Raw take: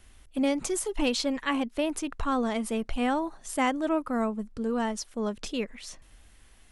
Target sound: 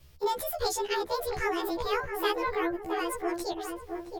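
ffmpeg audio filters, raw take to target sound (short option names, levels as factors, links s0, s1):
-filter_complex "[0:a]afftfilt=real='re':imag='-im':win_size=2048:overlap=0.75,asetrate=70560,aresample=44100,asplit=2[s0][s1];[s1]adelay=670,lowpass=f=1100:p=1,volume=0.631,asplit=2[s2][s3];[s3]adelay=670,lowpass=f=1100:p=1,volume=0.41,asplit=2[s4][s5];[s5]adelay=670,lowpass=f=1100:p=1,volume=0.41,asplit=2[s6][s7];[s7]adelay=670,lowpass=f=1100:p=1,volume=0.41,asplit=2[s8][s9];[s9]adelay=670,lowpass=f=1100:p=1,volume=0.41[s10];[s0][s2][s4][s6][s8][s10]amix=inputs=6:normalize=0,volume=1.26"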